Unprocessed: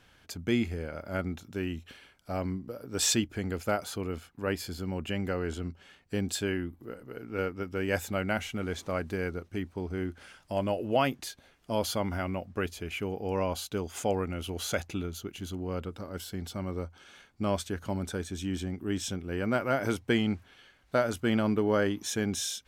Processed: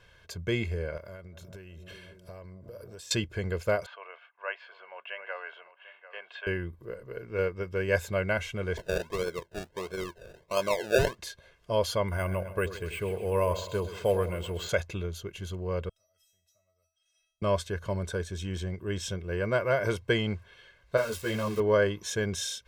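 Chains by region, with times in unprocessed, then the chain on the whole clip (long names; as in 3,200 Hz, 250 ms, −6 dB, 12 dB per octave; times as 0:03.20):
0:00.97–0:03.11: high-shelf EQ 7,900 Hz +8.5 dB + delay with a low-pass on its return 183 ms, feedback 77%, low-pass 820 Hz, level −19 dB + downward compressor 16 to 1, threshold −42 dBFS
0:03.86–0:06.47: Chebyshev band-pass filter 680–2,900 Hz, order 3 + single-tap delay 745 ms −14.5 dB
0:08.77–0:11.18: high-pass filter 240 Hz + sample-and-hold swept by an LFO 33×, swing 60% 1.5 Hz
0:12.08–0:14.69: bad sample-rate conversion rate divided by 4×, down filtered, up hold + echo with a time of its own for lows and highs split 840 Hz, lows 86 ms, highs 130 ms, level −11.5 dB
0:15.89–0:17.42: first-order pre-emphasis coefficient 0.8 + tuned comb filter 650 Hz, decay 0.41 s, mix 100% + multiband upward and downward compressor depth 70%
0:20.97–0:21.60: spike at every zero crossing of −21.5 dBFS + high-shelf EQ 6,300 Hz −6 dB + string-ensemble chorus
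whole clip: high-shelf EQ 7,400 Hz −9 dB; comb filter 1.9 ms, depth 82%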